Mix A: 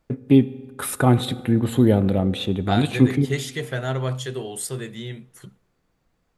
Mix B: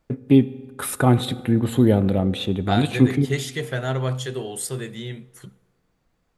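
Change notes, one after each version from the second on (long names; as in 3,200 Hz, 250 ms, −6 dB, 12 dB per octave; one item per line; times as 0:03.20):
second voice: send +7.5 dB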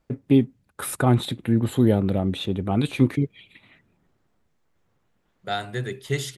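second voice: entry +2.80 s
reverb: off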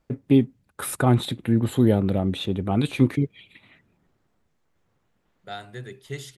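second voice −8.5 dB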